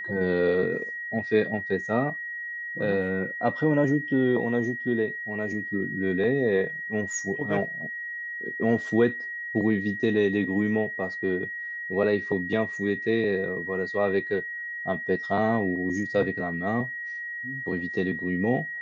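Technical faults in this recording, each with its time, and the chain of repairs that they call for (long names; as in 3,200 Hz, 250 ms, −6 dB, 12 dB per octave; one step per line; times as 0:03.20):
whistle 1,900 Hz −32 dBFS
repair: notch filter 1,900 Hz, Q 30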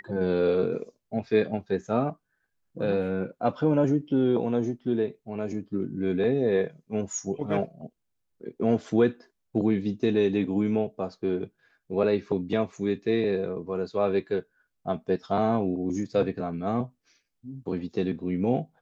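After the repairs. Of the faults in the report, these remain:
none of them is left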